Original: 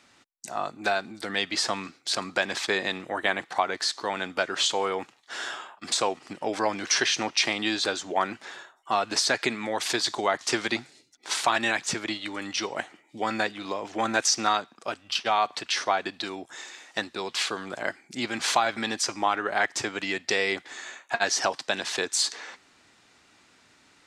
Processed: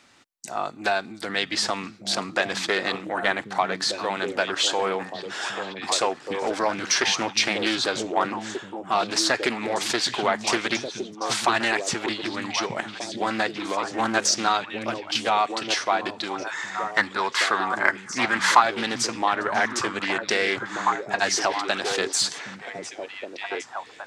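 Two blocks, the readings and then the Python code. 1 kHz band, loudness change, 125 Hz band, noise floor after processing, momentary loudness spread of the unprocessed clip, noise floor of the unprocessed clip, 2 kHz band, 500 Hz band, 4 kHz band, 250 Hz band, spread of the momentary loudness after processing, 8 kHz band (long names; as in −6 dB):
+4.0 dB, +3.0 dB, +4.0 dB, −44 dBFS, 11 LU, −61 dBFS, +3.5 dB, +3.0 dB, +2.0 dB, +3.5 dB, 9 LU, +1.5 dB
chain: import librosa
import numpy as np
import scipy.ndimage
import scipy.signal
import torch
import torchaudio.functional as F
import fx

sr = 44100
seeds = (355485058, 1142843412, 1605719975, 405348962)

p1 = fx.spec_box(x, sr, start_s=16.41, length_s=2.21, low_hz=830.0, high_hz=2200.0, gain_db=10)
p2 = 10.0 ** (-17.5 / 20.0) * np.tanh(p1 / 10.0 ** (-17.5 / 20.0))
p3 = p1 + F.gain(torch.from_numpy(p2), -9.5).numpy()
p4 = fx.echo_stepped(p3, sr, ms=768, hz=150.0, octaves=1.4, feedback_pct=70, wet_db=0.0)
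y = fx.doppler_dist(p4, sr, depth_ms=0.27)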